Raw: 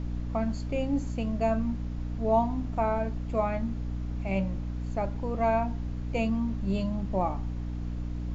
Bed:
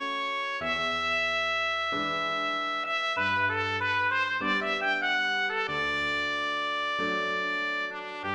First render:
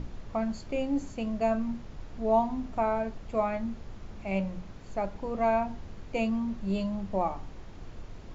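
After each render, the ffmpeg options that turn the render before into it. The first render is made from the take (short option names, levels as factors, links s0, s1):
-af "bandreject=f=60:t=h:w=6,bandreject=f=120:t=h:w=6,bandreject=f=180:t=h:w=6,bandreject=f=240:t=h:w=6,bandreject=f=300:t=h:w=6"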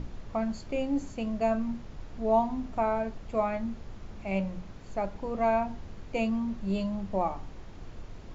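-af anull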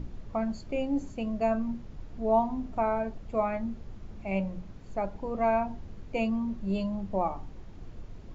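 -af "afftdn=nr=6:nf=-46"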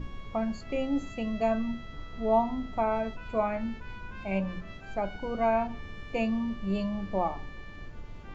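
-filter_complex "[1:a]volume=0.0944[s0];[0:a][s0]amix=inputs=2:normalize=0"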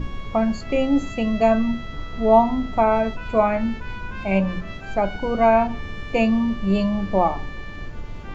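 -af "volume=3.16"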